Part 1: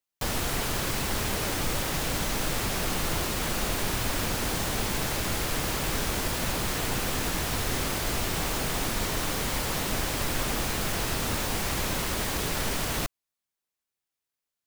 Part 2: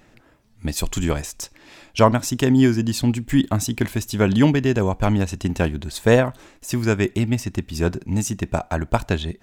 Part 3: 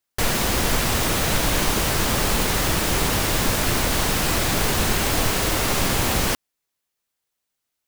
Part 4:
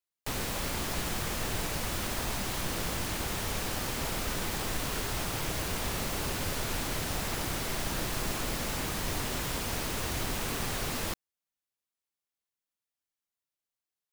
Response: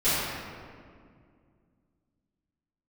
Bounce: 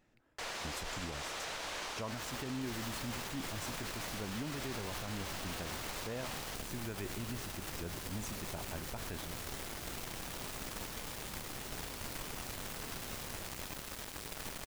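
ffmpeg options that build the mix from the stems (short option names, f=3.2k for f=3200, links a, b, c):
-filter_complex "[0:a]acrusher=bits=3:mix=0:aa=0.5,adelay=1800,volume=-10dB[a];[1:a]volume=-18.5dB,asplit=2[b][c];[2:a]acrossover=split=440 7700:gain=0.141 1 0.126[d][e][f];[d][e][f]amix=inputs=3:normalize=0,adelay=200,volume=-16dB[g];[3:a]alimiter=level_in=7dB:limit=-24dB:level=0:latency=1,volume=-7dB,adelay=2350,volume=-3.5dB[h];[c]apad=whole_len=725913[i];[a][i]sidechaincompress=threshold=-45dB:ratio=8:attack=16:release=102[j];[j][b][g][h]amix=inputs=4:normalize=0,alimiter=level_in=6.5dB:limit=-24dB:level=0:latency=1:release=61,volume=-6.5dB"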